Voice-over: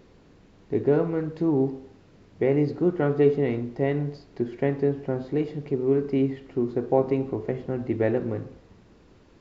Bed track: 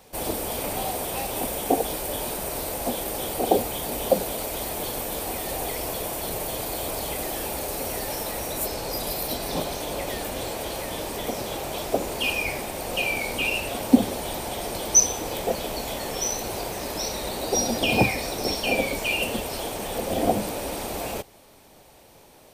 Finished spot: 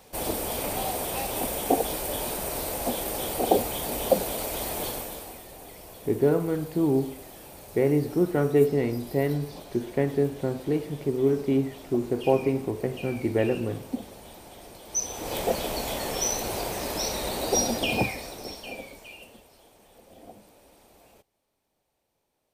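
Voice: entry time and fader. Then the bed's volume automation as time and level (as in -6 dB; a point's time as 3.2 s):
5.35 s, -0.5 dB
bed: 4.87 s -1 dB
5.49 s -16 dB
14.84 s -16 dB
15.36 s 0 dB
17.58 s 0 dB
19.54 s -25.5 dB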